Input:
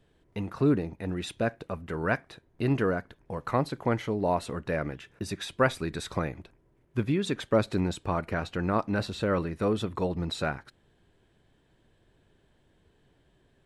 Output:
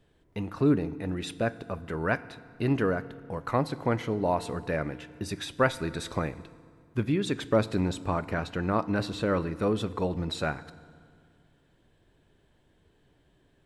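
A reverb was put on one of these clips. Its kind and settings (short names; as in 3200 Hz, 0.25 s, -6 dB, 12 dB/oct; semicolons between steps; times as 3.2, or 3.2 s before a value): FDN reverb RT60 2.1 s, low-frequency decay 1.25×, high-frequency decay 0.75×, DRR 15.5 dB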